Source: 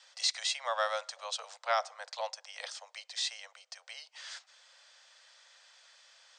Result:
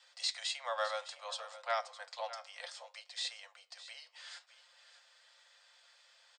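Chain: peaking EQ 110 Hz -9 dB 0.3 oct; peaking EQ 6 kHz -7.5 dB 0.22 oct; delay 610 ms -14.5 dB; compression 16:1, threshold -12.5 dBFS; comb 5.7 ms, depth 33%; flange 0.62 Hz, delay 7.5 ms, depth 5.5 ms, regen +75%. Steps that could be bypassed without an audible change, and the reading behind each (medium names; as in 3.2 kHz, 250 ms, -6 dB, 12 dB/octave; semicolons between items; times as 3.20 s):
peaking EQ 110 Hz: input has nothing below 430 Hz; compression, threshold -12.5 dBFS: peak at its input -18.0 dBFS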